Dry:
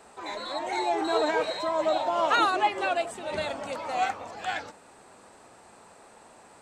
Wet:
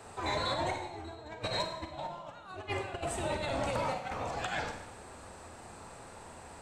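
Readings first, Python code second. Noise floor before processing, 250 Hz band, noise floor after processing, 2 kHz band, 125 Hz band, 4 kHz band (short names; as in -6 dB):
-54 dBFS, -6.0 dB, -50 dBFS, -7.5 dB, +10.5 dB, -4.5 dB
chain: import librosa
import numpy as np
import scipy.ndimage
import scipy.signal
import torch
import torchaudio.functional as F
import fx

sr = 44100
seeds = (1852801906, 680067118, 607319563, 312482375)

y = fx.octave_divider(x, sr, octaves=2, level_db=3.0)
y = fx.over_compress(y, sr, threshold_db=-33.0, ratio=-0.5)
y = fx.rev_schroeder(y, sr, rt60_s=0.84, comb_ms=33, drr_db=5.0)
y = y * librosa.db_to_amplitude(-4.0)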